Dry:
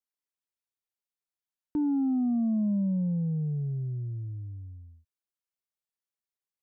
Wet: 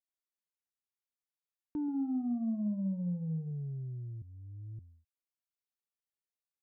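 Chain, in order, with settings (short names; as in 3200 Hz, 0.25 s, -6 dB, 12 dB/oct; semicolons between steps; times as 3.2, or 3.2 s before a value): 1.82–3.51 flutter echo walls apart 10.6 m, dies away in 0.43 s; 4.22–4.79 reverse; gain -7.5 dB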